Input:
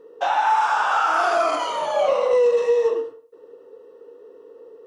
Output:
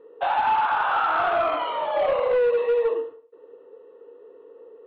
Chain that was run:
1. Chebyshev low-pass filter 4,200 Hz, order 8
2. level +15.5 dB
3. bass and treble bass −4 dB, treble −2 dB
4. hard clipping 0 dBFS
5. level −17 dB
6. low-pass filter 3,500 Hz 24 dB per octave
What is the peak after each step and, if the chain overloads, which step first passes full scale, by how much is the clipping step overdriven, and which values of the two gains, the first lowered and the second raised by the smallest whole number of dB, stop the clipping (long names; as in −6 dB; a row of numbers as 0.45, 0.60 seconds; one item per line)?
−11.0, +4.5, +4.5, 0.0, −17.0, −16.0 dBFS
step 2, 4.5 dB
step 2 +10.5 dB, step 5 −12 dB